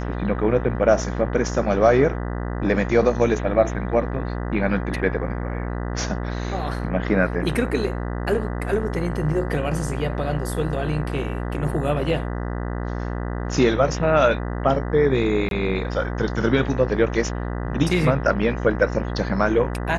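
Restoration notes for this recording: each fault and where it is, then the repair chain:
buzz 60 Hz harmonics 33 -27 dBFS
15.49–15.51 gap 22 ms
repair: de-hum 60 Hz, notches 33; interpolate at 15.49, 22 ms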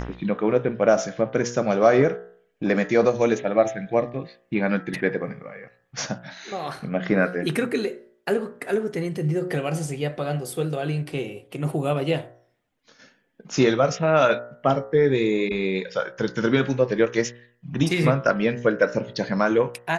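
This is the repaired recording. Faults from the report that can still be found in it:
none

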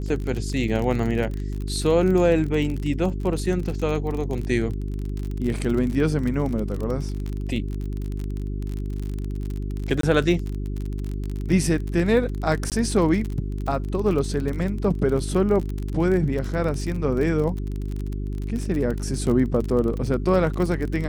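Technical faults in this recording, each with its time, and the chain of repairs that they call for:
crackle 36/s -27 dBFS
hum 50 Hz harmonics 8 -28 dBFS
10.01–10.03 gap 23 ms
12.7–12.72 gap 18 ms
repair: de-click; de-hum 50 Hz, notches 8; interpolate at 10.01, 23 ms; interpolate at 12.7, 18 ms

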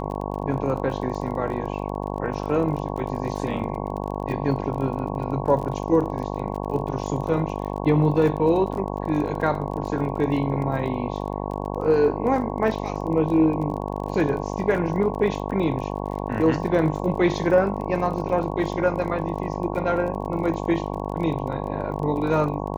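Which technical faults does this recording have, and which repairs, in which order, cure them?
buzz 50 Hz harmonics 22 -29 dBFS
crackle 27/s -32 dBFS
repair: de-click; de-hum 50 Hz, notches 22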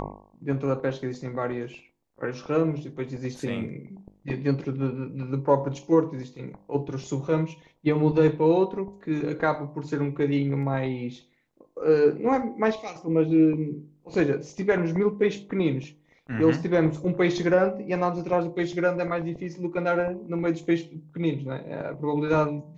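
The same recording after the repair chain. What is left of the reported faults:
none

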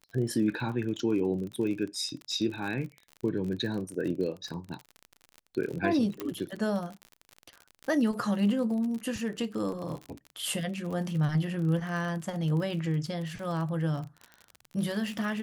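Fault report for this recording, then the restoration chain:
crackle 42/s -35 dBFS
6.2 pop -18 dBFS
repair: de-click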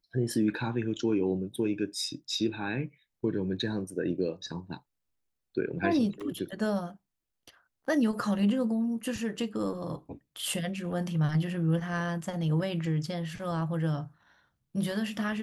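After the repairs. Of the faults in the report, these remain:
6.2 pop

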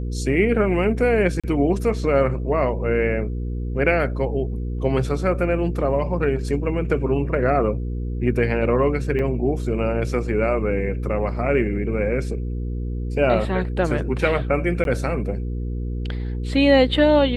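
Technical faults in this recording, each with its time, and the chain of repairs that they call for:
hum 60 Hz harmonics 8 -26 dBFS
1.4–1.44 gap 36 ms
9.19 gap 3.7 ms
14.84–14.85 gap 12 ms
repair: de-hum 60 Hz, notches 8; interpolate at 1.4, 36 ms; interpolate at 9.19, 3.7 ms; interpolate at 14.84, 12 ms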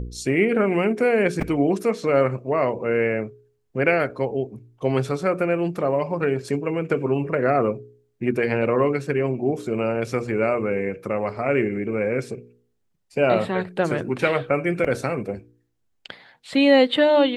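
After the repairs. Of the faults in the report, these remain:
none

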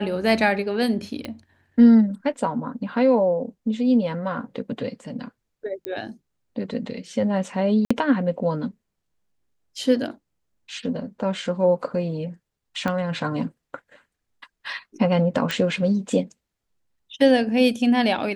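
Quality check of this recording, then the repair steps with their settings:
1.25 pop -17 dBFS
5.85 pop -14 dBFS
7.85–7.91 gap 55 ms
12.88 pop -13 dBFS
15.51 pop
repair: de-click; interpolate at 7.85, 55 ms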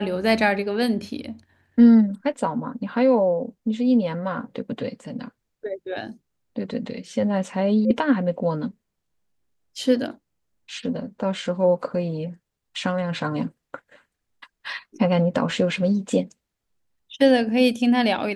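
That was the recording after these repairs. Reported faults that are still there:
1.25 pop
12.88 pop

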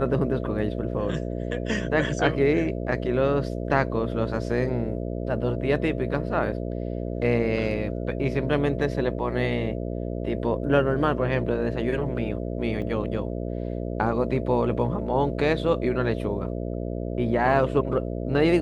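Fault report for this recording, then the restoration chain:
buzz 60 Hz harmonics 11 -30 dBFS
12.82 gap 2.1 ms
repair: de-hum 60 Hz, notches 11; interpolate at 12.82, 2.1 ms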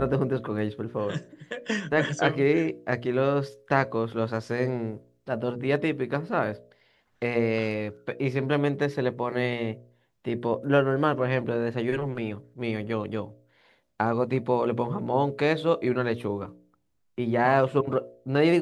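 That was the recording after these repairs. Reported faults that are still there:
none

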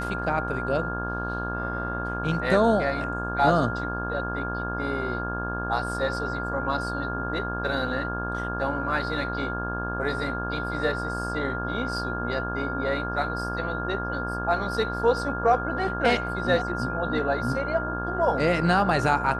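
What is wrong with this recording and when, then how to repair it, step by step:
buzz 60 Hz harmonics 28 -32 dBFS
tone 1400 Hz -31 dBFS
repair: de-hum 60 Hz, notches 28; notch 1400 Hz, Q 30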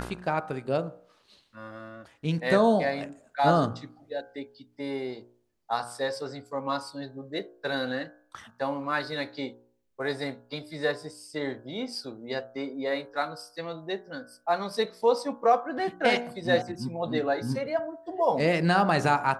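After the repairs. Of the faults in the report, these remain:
none

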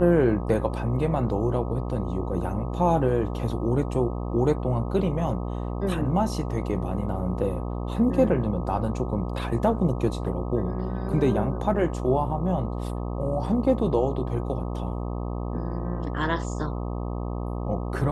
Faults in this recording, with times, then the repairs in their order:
buzz 60 Hz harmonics 21 -30 dBFS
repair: de-hum 60 Hz, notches 21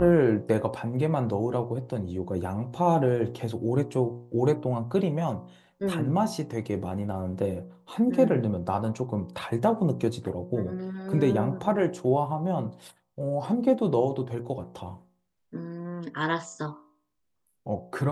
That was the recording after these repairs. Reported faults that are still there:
none

